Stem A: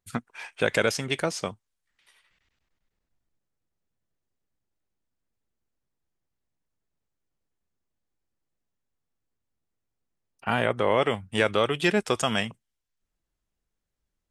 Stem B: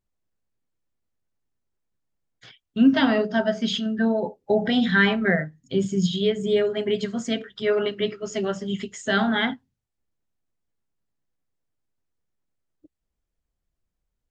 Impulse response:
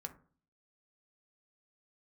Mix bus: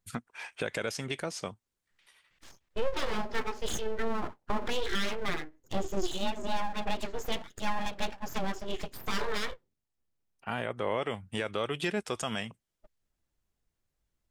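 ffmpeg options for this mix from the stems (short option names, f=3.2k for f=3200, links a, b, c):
-filter_complex "[0:a]volume=-1dB[a];[1:a]adynamicequalizer=threshold=0.0158:dfrequency=690:dqfactor=1.6:tfrequency=690:tqfactor=1.6:attack=5:release=100:ratio=0.375:range=2:mode=cutabove:tftype=bell,aeval=exprs='abs(val(0))':c=same,volume=-3dB,asplit=2[b][c];[c]apad=whole_len=630916[d];[a][d]sidechaincompress=threshold=-45dB:ratio=4:attack=30:release=1110[e];[e][b]amix=inputs=2:normalize=0,alimiter=limit=-19dB:level=0:latency=1:release=363"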